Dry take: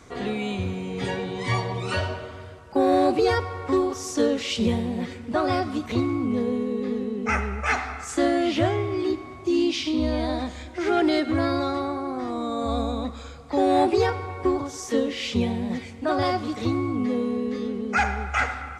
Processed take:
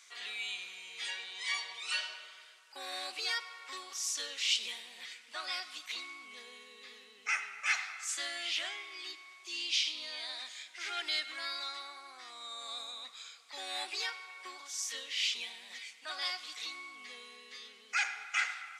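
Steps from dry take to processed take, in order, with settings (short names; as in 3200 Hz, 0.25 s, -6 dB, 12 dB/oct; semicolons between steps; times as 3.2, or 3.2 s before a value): Chebyshev high-pass 2800 Hz, order 2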